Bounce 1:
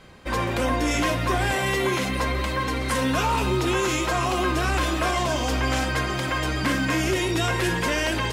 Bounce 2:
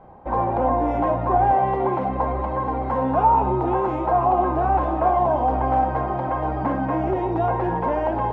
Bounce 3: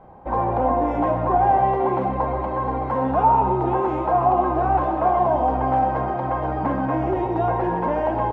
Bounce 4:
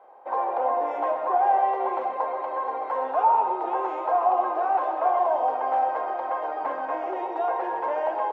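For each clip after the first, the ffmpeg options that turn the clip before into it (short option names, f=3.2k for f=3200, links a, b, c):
-af "lowpass=f=820:t=q:w=5.6,volume=-1dB"
-af "aecho=1:1:131:0.355"
-af "highpass=f=460:w=0.5412,highpass=f=460:w=1.3066,volume=-3dB"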